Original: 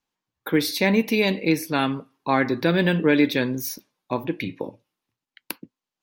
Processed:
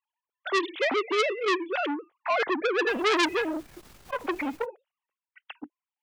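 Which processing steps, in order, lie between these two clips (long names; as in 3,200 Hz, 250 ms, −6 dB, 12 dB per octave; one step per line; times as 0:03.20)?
three sine waves on the formant tracks
0:02.87–0:04.64: background noise pink −50 dBFS
saturating transformer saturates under 3,200 Hz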